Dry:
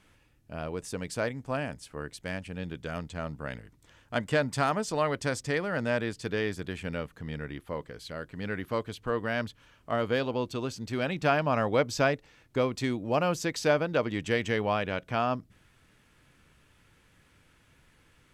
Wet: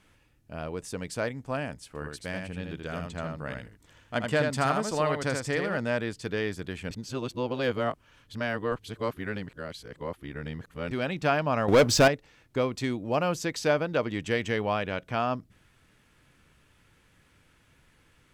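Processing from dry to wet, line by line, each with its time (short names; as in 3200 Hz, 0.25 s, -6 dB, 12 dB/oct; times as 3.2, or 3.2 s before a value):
1.87–5.77 echo 80 ms -4.5 dB
6.91–10.91 reverse
11.68–12.08 sample leveller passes 3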